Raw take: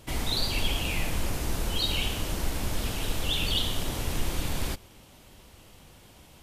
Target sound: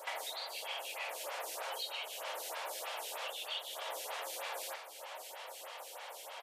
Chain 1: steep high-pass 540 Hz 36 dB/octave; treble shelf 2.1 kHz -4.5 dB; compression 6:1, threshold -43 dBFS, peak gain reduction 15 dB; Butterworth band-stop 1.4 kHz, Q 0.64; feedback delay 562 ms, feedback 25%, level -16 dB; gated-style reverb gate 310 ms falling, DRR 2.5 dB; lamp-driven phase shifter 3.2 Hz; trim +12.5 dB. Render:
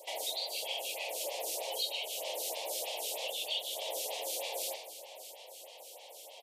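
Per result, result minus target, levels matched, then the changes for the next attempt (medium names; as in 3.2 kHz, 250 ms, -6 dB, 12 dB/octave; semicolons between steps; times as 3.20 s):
compression: peak gain reduction -7 dB; 1 kHz band -7.0 dB
change: compression 6:1, threshold -51.5 dBFS, peak gain reduction 22 dB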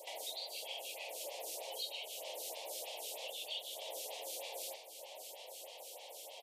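1 kHz band -6.0 dB
remove: Butterworth band-stop 1.4 kHz, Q 0.64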